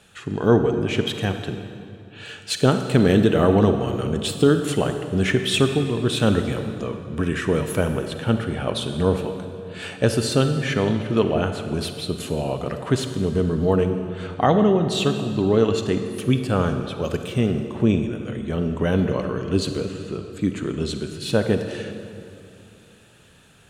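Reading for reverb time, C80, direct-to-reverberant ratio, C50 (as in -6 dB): 2.5 s, 8.5 dB, 7.0 dB, 7.5 dB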